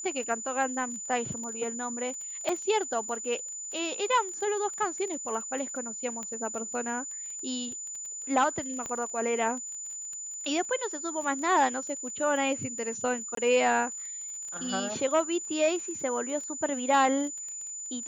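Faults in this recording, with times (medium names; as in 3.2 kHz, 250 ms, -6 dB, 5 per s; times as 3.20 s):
crackle 19 per s -37 dBFS
whine 7 kHz -36 dBFS
2.49 s: dropout 3.1 ms
6.23 s: pop -23 dBFS
8.86 s: pop -21 dBFS
13.35–13.37 s: dropout 23 ms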